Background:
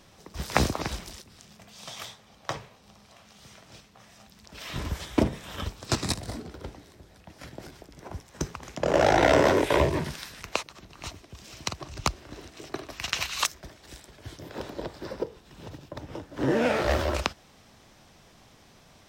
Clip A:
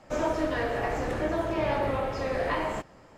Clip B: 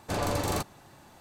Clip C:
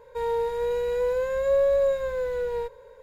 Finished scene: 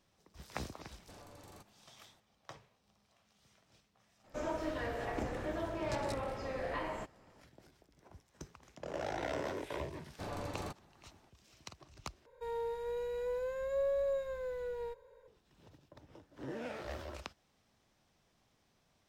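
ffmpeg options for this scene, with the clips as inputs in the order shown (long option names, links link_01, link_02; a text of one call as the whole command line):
ffmpeg -i bed.wav -i cue0.wav -i cue1.wav -i cue2.wav -filter_complex "[2:a]asplit=2[link_01][link_02];[0:a]volume=-18.5dB[link_03];[link_01]acompressor=threshold=-36dB:ratio=6:attack=3.2:release=140:knee=1:detection=peak[link_04];[link_02]aemphasis=mode=reproduction:type=cd[link_05];[link_03]asplit=2[link_06][link_07];[link_06]atrim=end=12.264[link_08];[3:a]atrim=end=3.02,asetpts=PTS-STARTPTS,volume=-12dB[link_09];[link_07]atrim=start=15.276[link_10];[link_04]atrim=end=1.2,asetpts=PTS-STARTPTS,volume=-16dB,afade=type=in:duration=0.004:curve=hsin,afade=type=out:start_time=1.196:duration=0.004:curve=hsin,adelay=1000[link_11];[1:a]atrim=end=3.17,asetpts=PTS-STARTPTS,volume=-10dB,afade=type=in:duration=0.004:curve=hsin,afade=type=out:start_time=3.166:duration=0.004:curve=hsin,adelay=4240[link_12];[link_05]atrim=end=1.2,asetpts=PTS-STARTPTS,volume=-12.5dB,afade=type=in:duration=0.004:curve=hsin,afade=type=out:start_time=1.196:duration=0.004:curve=hsin,adelay=445410S[link_13];[link_08][link_09]acrossfade=duration=0.004:curve1=hsin:curve2=hsin[link_14];[link_14][link_10]acrossfade=duration=0.004:curve1=hsin:curve2=hsin[link_15];[link_15][link_11][link_12][link_13]amix=inputs=4:normalize=0" out.wav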